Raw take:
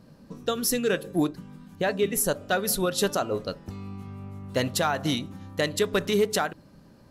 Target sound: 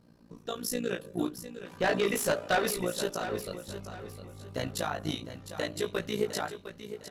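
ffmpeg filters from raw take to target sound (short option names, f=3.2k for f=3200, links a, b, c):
-filter_complex "[0:a]flanger=delay=17:depth=6.2:speed=0.35,tremolo=f=57:d=0.824,asettb=1/sr,asplit=3[a][b][c];[a]atrim=end=1.654[d];[b]atrim=start=1.65:end=2.71,asetpts=PTS-STARTPTS,afade=t=in:d=0.004:c=qsin,afade=t=out:st=1.056:d=0.004:c=qsin,asplit=2[e][f];[f]highpass=f=720:p=1,volume=24dB,asoftclip=type=tanh:threshold=-15.5dB[g];[e][g]amix=inputs=2:normalize=0,lowpass=f=3.3k:p=1,volume=-6dB[h];[c]atrim=start=2.706[i];[d][h]acrossfade=d=0.004:c1=hsin:c2=qsin[j];[j][i]acrossfade=d=0.004:c1=qsin:c2=hsin,asplit=2[k][l];[l]aecho=0:1:707|1414|2121|2828:0.282|0.093|0.0307|0.0101[m];[k][m]amix=inputs=2:normalize=0,volume=-1.5dB"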